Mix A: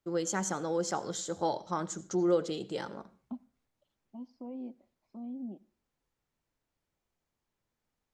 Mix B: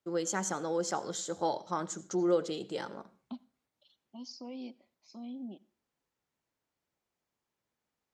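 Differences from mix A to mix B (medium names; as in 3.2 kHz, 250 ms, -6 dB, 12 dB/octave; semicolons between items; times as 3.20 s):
second voice: remove low-pass 1.1 kHz 12 dB/octave; master: add high-pass 180 Hz 6 dB/octave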